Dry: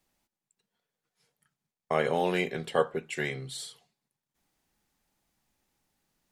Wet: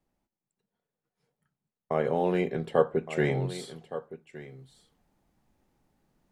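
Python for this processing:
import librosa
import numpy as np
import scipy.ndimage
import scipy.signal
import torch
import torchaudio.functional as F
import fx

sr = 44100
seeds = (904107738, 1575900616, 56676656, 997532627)

y = fx.tilt_shelf(x, sr, db=8.0, hz=1500.0)
y = y + 10.0 ** (-18.0 / 20.0) * np.pad(y, (int(1166 * sr / 1000.0), 0))[:len(y)]
y = fx.rider(y, sr, range_db=10, speed_s=0.5)
y = y * 10.0 ** (-2.5 / 20.0)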